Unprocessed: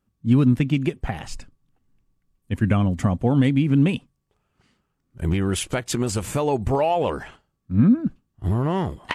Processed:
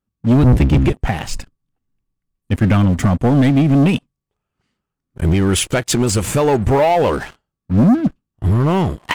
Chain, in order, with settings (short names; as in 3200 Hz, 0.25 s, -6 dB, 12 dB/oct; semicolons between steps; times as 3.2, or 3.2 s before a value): 0.42–0.93 octaver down 1 oct, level +1 dB; sample leveller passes 3; gain -1.5 dB